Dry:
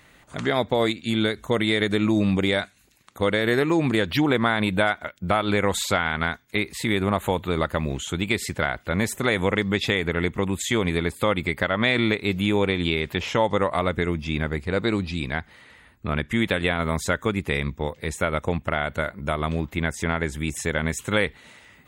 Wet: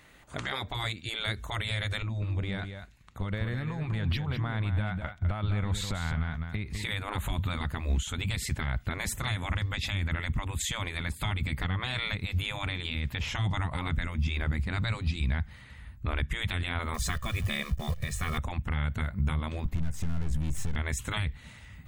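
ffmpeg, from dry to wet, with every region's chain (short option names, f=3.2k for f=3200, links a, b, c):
-filter_complex "[0:a]asettb=1/sr,asplit=3[a][b][c];[a]atrim=end=2.024[d];[b]atrim=start=2.02:end=6.83,asetpts=PTS-STARTPTS,afade=t=in:d=0.004:c=qsin,afade=t=out:st=4.806:d=0.004:c=qsin,lowpass=f=3.2k:p=1,acompressor=threshold=-26dB:ratio=12:attack=3.2:release=140:knee=1:detection=peak,aecho=1:1:203:0.355,atrim=end_sample=212121[e];[c]atrim=start=6.826[f];[d][e]acrossfade=d=0.004:c1=hsin:c2=qsin[g];[g][f]acrossfade=d=0.004:c1=qsin:c2=hsin,asettb=1/sr,asplit=3[h][i][j];[h]atrim=end=16.944[k];[i]atrim=start=16.94:end=18.38,asetpts=PTS-STARTPTS,afade=t=in:d=0.004:c=qsin,afade=t=out:st=1.436:d=0.004:c=qsin,bandreject=f=50:t=h:w=6,bandreject=f=100:t=h:w=6,acrusher=bits=8:dc=4:mix=0:aa=0.000001,aecho=1:1:1.7:0.81,atrim=end_sample=63504[l];[j]atrim=start=18.376[m];[k][l]acrossfade=d=0.004:c1=hsin:c2=qsin[n];[n][m]acrossfade=d=0.004:c1=qsin:c2=hsin,asettb=1/sr,asplit=3[o][p][q];[o]atrim=end=19.654[r];[p]atrim=start=19.65:end=20.76,asetpts=PTS-STARTPTS,afade=t=in:d=0.004:c=qsin,afade=t=out:st=1.106:d=0.004:c=qsin,equalizer=f=290:t=o:w=2.6:g=8.5,acompressor=threshold=-21dB:ratio=3:attack=3.2:release=140:knee=1:detection=peak,aeval=exprs='(tanh(44.7*val(0)+0.65)-tanh(0.65))/44.7':c=same[s];[q]atrim=start=20.756[t];[r][s]acrossfade=d=0.004:c1=hsin:c2=qsin[u];[u][t]acrossfade=d=0.004:c1=qsin:c2=hsin,afftfilt=real='re*lt(hypot(re,im),0.224)':imag='im*lt(hypot(re,im),0.224)':win_size=1024:overlap=0.75,asubboost=boost=12:cutoff=110,alimiter=limit=-16.5dB:level=0:latency=1:release=180,volume=-3dB"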